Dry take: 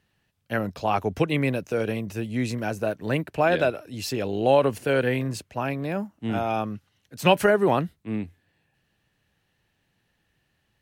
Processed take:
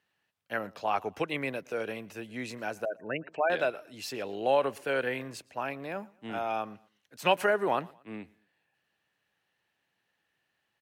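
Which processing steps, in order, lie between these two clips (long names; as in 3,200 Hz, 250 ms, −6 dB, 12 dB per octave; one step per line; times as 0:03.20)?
high-pass filter 1,000 Hz 6 dB per octave
0:02.85–0:03.50: gate on every frequency bin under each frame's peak −15 dB strong
high-shelf EQ 2,600 Hz −8.5 dB
repeating echo 116 ms, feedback 38%, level −24 dB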